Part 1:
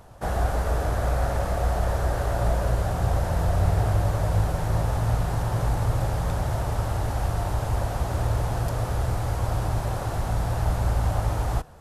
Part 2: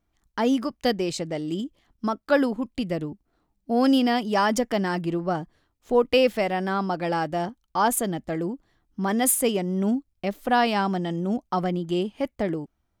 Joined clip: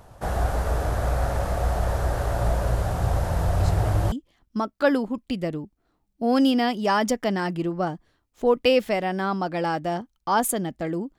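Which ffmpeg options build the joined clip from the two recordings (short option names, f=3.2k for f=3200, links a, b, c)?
-filter_complex "[1:a]asplit=2[a][b];[0:a]apad=whole_dur=11.18,atrim=end=11.18,atrim=end=4.122[c];[b]atrim=start=1.598:end=8.66[d];[a]atrim=start=1.08:end=1.6,asetpts=PTS-STARTPTS,volume=-9.5dB,afade=t=in:d=0.004:c=hsin,afade=t=out:st=0.516:d=0.004:c=hsin,adelay=3600[e];[c][d]acrossfade=d=0.004:c1=hsin:c2=hsin[f];[f][e]amix=inputs=2:normalize=0"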